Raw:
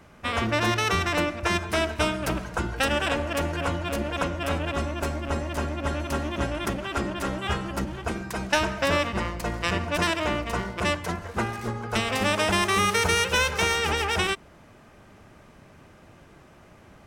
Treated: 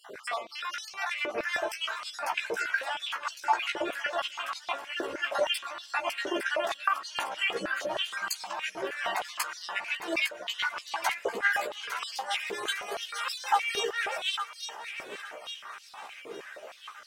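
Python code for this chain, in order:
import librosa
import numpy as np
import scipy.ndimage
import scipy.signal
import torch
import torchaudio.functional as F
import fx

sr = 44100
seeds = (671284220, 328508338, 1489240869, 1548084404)

y = fx.spec_dropout(x, sr, seeds[0], share_pct=36)
y = fx.dereverb_blind(y, sr, rt60_s=0.73)
y = fx.spec_box(y, sr, start_s=6.73, length_s=0.27, low_hz=1900.0, high_hz=9600.0, gain_db=-15)
y = fx.over_compress(y, sr, threshold_db=-37.0, ratio=-1.0)
y = fx.step_gate(y, sr, bpm=199, pattern='x...xx.xx', floor_db=-60.0, edge_ms=4.5, at=(9.78, 10.53), fade=0.02)
y = fx.doubler(y, sr, ms=15.0, db=-3.5)
y = fx.echo_feedback(y, sr, ms=856, feedback_pct=49, wet_db=-9.0)
y = fx.filter_held_highpass(y, sr, hz=6.4, low_hz=430.0, high_hz=4500.0)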